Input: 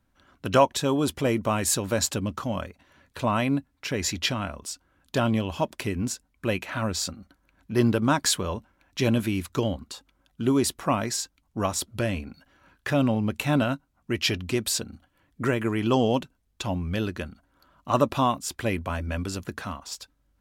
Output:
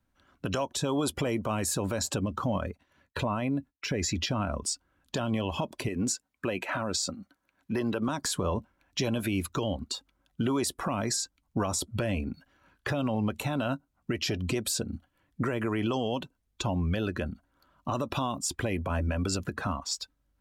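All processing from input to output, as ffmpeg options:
ffmpeg -i in.wav -filter_complex "[0:a]asettb=1/sr,asplit=3[link_01][link_02][link_03];[link_01]atrim=end=2.254[link_04];[link_02]atrim=start=2.25:end=4.68,asetpts=PTS-STARTPTS,afade=type=in:duration=0.004:curve=qsin,afade=type=out:start_time=2.426:duration=0.004:curve=qsin,agate=range=-33dB:threshold=-56dB:ratio=3:release=100:detection=peak,acompressor=threshold=-31dB:ratio=3:attack=3.2:release=140:knee=1:detection=peak[link_05];[link_03]atrim=start=4.676[link_06];[link_04][link_05]acrossfade=duration=0.004:curve1=hsin:curve2=qsin[link_07];[link_07][link_06]acrossfade=duration=0.004:curve1=qsin:curve2=hsin,asettb=1/sr,asplit=3[link_08][link_09][link_10];[link_08]atrim=end=5.884[link_11];[link_09]atrim=start=5.88:end=8.09,asetpts=PTS-STARTPTS,afade=type=in:duration=0.004:curve=qsin,afade=type=out:start_time=2.206:duration=0.004:curve=qsin,highpass=frequency=320:poles=1,acompressor=threshold=-29dB:ratio=2:attack=3.2:release=140:knee=1:detection=peak[link_12];[link_10]atrim=start=8.086[link_13];[link_11][link_12]acrossfade=duration=0.004:curve1=hsin:curve2=qsin[link_14];[link_14][link_13]acrossfade=duration=0.004:curve1=qsin:curve2=hsin,afftdn=noise_reduction=13:noise_floor=-41,acrossover=split=550|1200|4400[link_15][link_16][link_17][link_18];[link_15]acompressor=threshold=-34dB:ratio=4[link_19];[link_16]acompressor=threshold=-37dB:ratio=4[link_20];[link_17]acompressor=threshold=-45dB:ratio=4[link_21];[link_18]acompressor=threshold=-33dB:ratio=4[link_22];[link_19][link_20][link_21][link_22]amix=inputs=4:normalize=0,alimiter=level_in=4dB:limit=-24dB:level=0:latency=1:release=85,volume=-4dB,volume=8dB" out.wav

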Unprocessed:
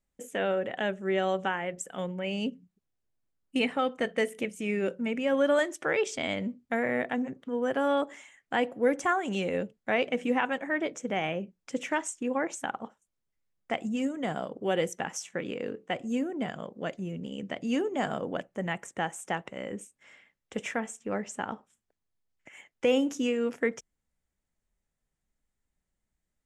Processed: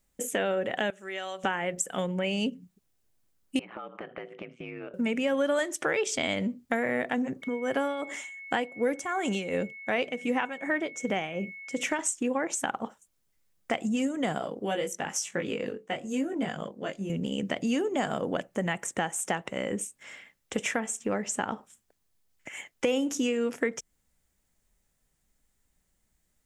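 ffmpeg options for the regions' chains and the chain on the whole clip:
ffmpeg -i in.wav -filter_complex "[0:a]asettb=1/sr,asplit=3[link_01][link_02][link_03];[link_01]atrim=end=0.904[link_04];[link_02]atrim=start=0.9:end=1.44,asetpts=PTS-STARTPTS,afade=type=in:duration=0.004:curve=qsin,afade=type=out:start_time=0.536:duration=0.004:curve=qsin,highpass=frequency=1500:poles=1,acompressor=threshold=-47dB:ratio=2:attack=3.2:release=140:knee=1:detection=peak[link_05];[link_03]atrim=start=1.436[link_06];[link_04][link_05]acrossfade=duration=0.004:curve1=hsin:curve2=qsin[link_07];[link_07][link_06]acrossfade=duration=0.004:curve1=qsin:curve2=hsin,asettb=1/sr,asplit=3[link_08][link_09][link_10];[link_08]atrim=end=3.594[link_11];[link_09]atrim=start=3.59:end=4.94,asetpts=PTS-STARTPTS,afade=type=in:duration=0.004:curve=qsin,afade=type=out:start_time=1.346:duration=0.004:curve=qsin,aeval=exprs='val(0)*sin(2*PI*57*n/s)':channel_layout=same,highpass=230,equalizer=frequency=290:width_type=q:width=4:gain=-7,equalizer=frequency=470:width_type=q:width=4:gain=-5,equalizer=frequency=1200:width_type=q:width=4:gain=5,equalizer=frequency=1900:width_type=q:width=4:gain=-7,lowpass=frequency=2600:width=0.5412,lowpass=frequency=2600:width=1.3066,acompressor=threshold=-43dB:ratio=16:attack=3.2:release=140:knee=1:detection=peak[link_12];[link_10]atrim=start=4.936[link_13];[link_11][link_12]acrossfade=duration=0.004:curve1=hsin:curve2=qsin[link_14];[link_14][link_13]acrossfade=duration=0.004:curve1=qsin:curve2=hsin,asettb=1/sr,asplit=3[link_15][link_16][link_17];[link_15]atrim=end=7.424[link_18];[link_16]atrim=start=7.42:end=11.99,asetpts=PTS-STARTPTS,afade=type=in:duration=0.004:curve=qsin,afade=type=out:start_time=4.566:duration=0.004:curve=qsin,tremolo=f=2.7:d=0.75,aeval=exprs='val(0)+0.00316*sin(2*PI*2200*n/s)':channel_layout=same[link_19];[link_17]atrim=start=11.986[link_20];[link_18][link_19]acrossfade=duration=0.004:curve1=hsin:curve2=qsin[link_21];[link_21][link_20]acrossfade=duration=0.004:curve1=qsin:curve2=hsin,asettb=1/sr,asplit=3[link_22][link_23][link_24];[link_22]atrim=end=14.384[link_25];[link_23]atrim=start=14.38:end=17.1,asetpts=PTS-STARTPTS,afade=type=in:duration=0.004:curve=qsin,afade=type=out:start_time=2.716:duration=0.004:curve=qsin,tremolo=f=1:d=0.43,flanger=delay=18:depth=2.6:speed=1[link_26];[link_24]atrim=start=17.096[link_27];[link_25][link_26]acrossfade=duration=0.004:curve1=hsin:curve2=qsin[link_28];[link_28][link_27]acrossfade=duration=0.004:curve1=qsin:curve2=hsin,highshelf=frequency=5000:gain=7.5,acompressor=threshold=-35dB:ratio=3,volume=8dB" out.wav

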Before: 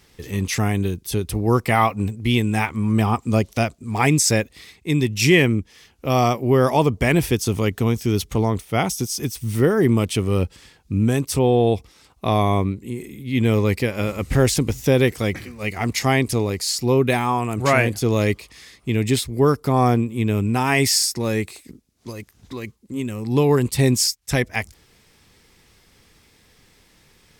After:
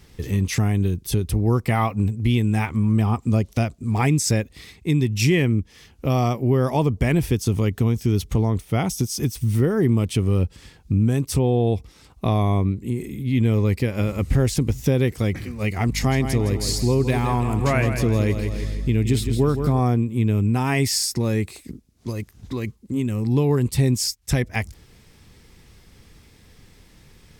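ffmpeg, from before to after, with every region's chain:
ffmpeg -i in.wav -filter_complex "[0:a]asettb=1/sr,asplit=3[link_01][link_02][link_03];[link_01]atrim=end=15.874[link_04];[link_02]atrim=start=15.87:end=19.8,asetpts=PTS-STARTPTS,afade=type=in:duration=0.004:curve=qsin,afade=type=out:start_time=3.926:duration=0.004:curve=qsin,aeval=exprs='val(0)+0.02*(sin(2*PI*50*n/s)+sin(2*PI*2*50*n/s)/2+sin(2*PI*3*50*n/s)/3+sin(2*PI*4*50*n/s)/4+sin(2*PI*5*50*n/s)/5)':channel_layout=same,aecho=1:1:163|326|489|652|815:0.335|0.147|0.0648|0.0285|0.0126,atrim=end_sample=173313[link_05];[link_03]atrim=start=19.796[link_06];[link_04][link_05]acrossfade=duration=0.004:curve1=hsin:curve2=qsin[link_07];[link_07][link_06]acrossfade=duration=0.004:curve1=qsin:curve2=hsin,lowshelf=frequency=260:gain=10,acompressor=threshold=-21dB:ratio=2" out.wav

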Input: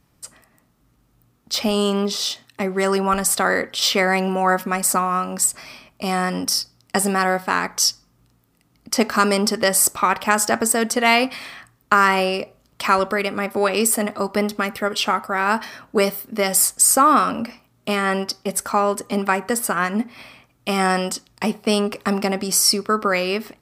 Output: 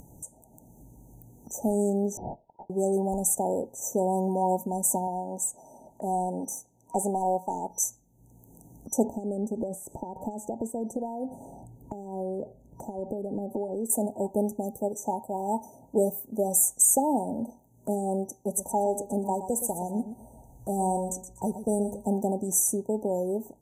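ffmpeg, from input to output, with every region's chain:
ffmpeg -i in.wav -filter_complex "[0:a]asettb=1/sr,asplit=3[link_01][link_02][link_03];[link_01]atrim=end=2.174[link_04];[link_02]atrim=start=2.17:end=2.7,asetpts=PTS-STARTPTS,afade=type=in:duration=0.004:curve=qsin,afade=type=out:start_time=0.526:duration=0.004:curve=qsin,tiltshelf=frequency=1100:gain=-7.5,lowpass=frequency=3100:width_type=q:width=0.5098,lowpass=frequency=3100:width_type=q:width=0.6013,lowpass=frequency=3100:width_type=q:width=0.9,lowpass=frequency=3100:width_type=q:width=2.563,afreqshift=-3700[link_05];[link_03]atrim=start=2.696[link_06];[link_04][link_05]acrossfade=duration=0.004:curve1=hsin:curve2=qsin[link_07];[link_07][link_06]acrossfade=duration=0.004:curve1=qsin:curve2=hsin,asettb=1/sr,asplit=3[link_08][link_09][link_10];[link_08]atrim=end=5.074[link_11];[link_09]atrim=start=5.07:end=7.7,asetpts=PTS-STARTPTS,afade=type=in:duration=0.004:curve=qsin,afade=type=out:start_time=2.626:duration=0.004:curve=qsin,asplit=2[link_12][link_13];[link_13]highpass=frequency=720:poles=1,volume=9dB,asoftclip=type=tanh:threshold=-4dB[link_14];[link_12][link_14]amix=inputs=2:normalize=0,lowpass=frequency=2800:poles=1,volume=-6dB,equalizer=frequency=71:width=1.4:gain=-8[link_15];[link_10]atrim=start=7.696[link_16];[link_11][link_15]acrossfade=duration=0.004:curve1=hsin:curve2=qsin[link_17];[link_17][link_16]acrossfade=duration=0.004:curve1=qsin:curve2=hsin,asettb=1/sr,asplit=3[link_18][link_19][link_20];[link_18]atrim=end=9.044[link_21];[link_19]atrim=start=9.04:end=13.9,asetpts=PTS-STARTPTS,afade=type=in:duration=0.004:curve=qsin,afade=type=out:start_time=4.856:duration=0.004:curve=qsin,acompressor=threshold=-26dB:ratio=12:attack=3.2:release=140:knee=1:detection=peak,tiltshelf=frequency=1200:gain=7.5[link_22];[link_20]atrim=start=13.896[link_23];[link_21][link_22]acrossfade=duration=0.004:curve1=hsin:curve2=qsin[link_24];[link_24][link_23]acrossfade=duration=0.004:curve1=qsin:curve2=hsin,asettb=1/sr,asplit=3[link_25][link_26][link_27];[link_25]atrim=end=18.424[link_28];[link_26]atrim=start=18.42:end=22.06,asetpts=PTS-STARTPTS,afade=type=in:duration=0.004:curve=qsin,afade=type=out:start_time=3.636:duration=0.004:curve=qsin,asubboost=boost=7:cutoff=96,aecho=1:1:121|242|363:0.282|0.0564|0.0113,atrim=end_sample=160524[link_29];[link_27]atrim=start=22.056[link_30];[link_28][link_29]acrossfade=duration=0.004:curve1=hsin:curve2=qsin[link_31];[link_31][link_30]acrossfade=duration=0.004:curve1=qsin:curve2=hsin,afftfilt=real='re*(1-between(b*sr/4096,950,5900))':imag='im*(1-between(b*sr/4096,950,5900))':win_size=4096:overlap=0.75,acompressor=mode=upward:threshold=-31dB:ratio=2.5,volume=-5.5dB" out.wav

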